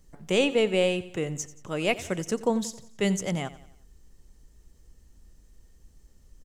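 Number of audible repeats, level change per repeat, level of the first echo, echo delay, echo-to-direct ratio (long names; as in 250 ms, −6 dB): 3, −6.5 dB, −17.0 dB, 89 ms, −16.0 dB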